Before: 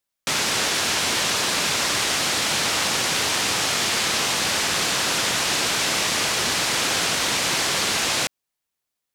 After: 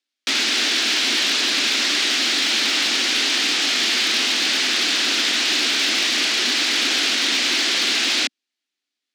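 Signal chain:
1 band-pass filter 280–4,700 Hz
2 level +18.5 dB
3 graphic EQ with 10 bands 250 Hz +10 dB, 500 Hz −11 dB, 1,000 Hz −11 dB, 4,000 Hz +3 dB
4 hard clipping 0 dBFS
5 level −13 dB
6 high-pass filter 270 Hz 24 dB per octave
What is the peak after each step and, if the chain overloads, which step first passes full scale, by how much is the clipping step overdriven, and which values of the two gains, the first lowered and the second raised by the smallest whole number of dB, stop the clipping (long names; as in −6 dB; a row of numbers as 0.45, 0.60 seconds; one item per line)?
−11.5, +7.0, +6.5, 0.0, −13.0, −9.0 dBFS
step 2, 6.5 dB
step 2 +11.5 dB, step 5 −6 dB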